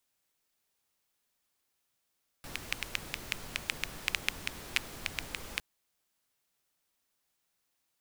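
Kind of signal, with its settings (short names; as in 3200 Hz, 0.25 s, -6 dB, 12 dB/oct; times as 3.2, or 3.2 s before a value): rain from filtered ticks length 3.16 s, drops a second 5.9, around 2400 Hz, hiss -5 dB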